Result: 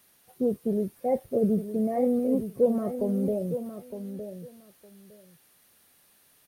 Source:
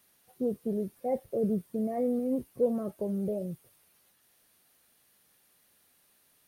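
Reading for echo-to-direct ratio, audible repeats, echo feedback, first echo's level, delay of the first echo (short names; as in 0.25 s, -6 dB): -10.0 dB, 2, 17%, -10.0 dB, 0.911 s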